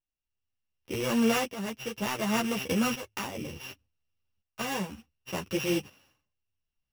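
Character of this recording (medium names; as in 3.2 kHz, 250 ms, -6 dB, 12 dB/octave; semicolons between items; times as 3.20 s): a buzz of ramps at a fixed pitch in blocks of 16 samples; tremolo saw up 0.68 Hz, depth 75%; aliases and images of a low sample rate 8.4 kHz, jitter 0%; a shimmering, thickened sound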